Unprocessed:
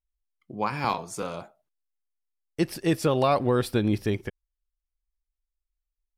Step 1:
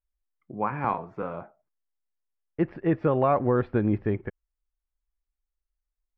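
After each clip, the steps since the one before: LPF 1900 Hz 24 dB/oct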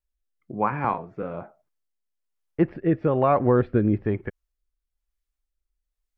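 rotary speaker horn 1.1 Hz; gain +4.5 dB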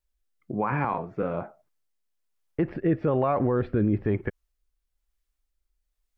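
limiter -18.5 dBFS, peak gain reduction 11 dB; gain +3.5 dB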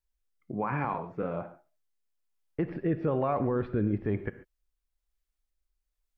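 non-linear reverb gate 0.16 s flat, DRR 11.5 dB; gain -4.5 dB

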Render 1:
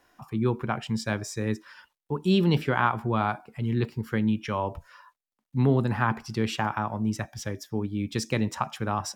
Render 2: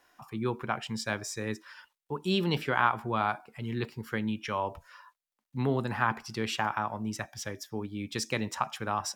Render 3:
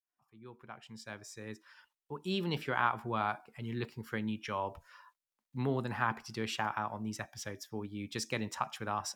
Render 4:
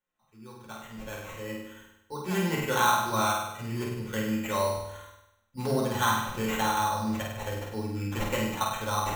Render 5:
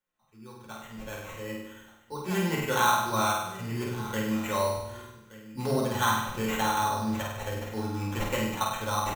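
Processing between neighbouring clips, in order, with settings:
low shelf 400 Hz -9.5 dB
opening faded in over 2.98 s; gain -4.5 dB
sample-and-hold 9×; flutter echo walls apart 8.5 m, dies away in 0.86 s; reverb RT60 0.30 s, pre-delay 3 ms, DRR -1 dB
echo 1.173 s -17.5 dB

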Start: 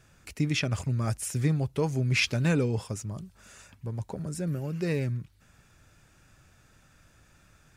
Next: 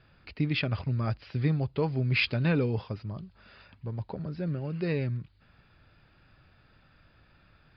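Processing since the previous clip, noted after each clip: Chebyshev low-pass 4900 Hz, order 8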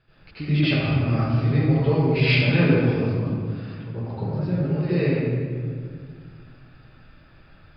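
reverb RT60 2.0 s, pre-delay 78 ms, DRR -13 dB; gain -5.5 dB

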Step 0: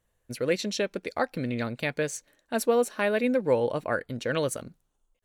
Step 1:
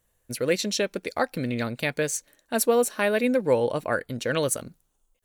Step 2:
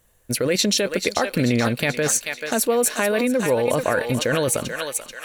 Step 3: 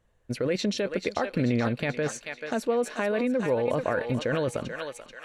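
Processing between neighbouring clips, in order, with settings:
high shelf 6900 Hz +10 dB; gain +2 dB
thinning echo 0.436 s, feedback 60%, high-pass 990 Hz, level -8.5 dB; in parallel at +2 dB: negative-ratio compressor -28 dBFS, ratio -0.5
tape spacing loss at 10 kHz 20 dB; gain -4.5 dB

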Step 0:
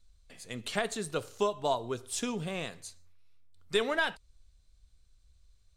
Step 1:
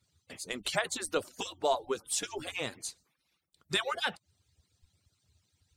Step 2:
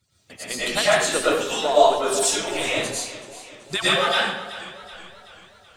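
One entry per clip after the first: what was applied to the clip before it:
median-filter separation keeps percussive; in parallel at +2 dB: compressor, threshold -41 dBFS, peak gain reduction 15 dB
reverb RT60 0.80 s, pre-delay 70 ms, DRR -9.5 dB; warbling echo 0.38 s, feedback 53%, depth 55 cents, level -15 dB; gain +3.5 dB

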